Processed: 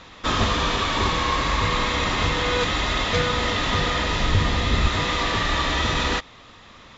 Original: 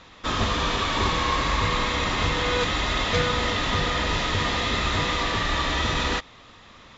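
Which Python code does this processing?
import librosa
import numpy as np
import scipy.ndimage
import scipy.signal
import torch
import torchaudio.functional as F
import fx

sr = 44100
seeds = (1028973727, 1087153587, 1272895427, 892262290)

y = fx.low_shelf(x, sr, hz=190.0, db=11.0, at=(4.2, 4.88))
y = fx.rider(y, sr, range_db=3, speed_s=0.5)
y = y * librosa.db_to_amplitude(1.5)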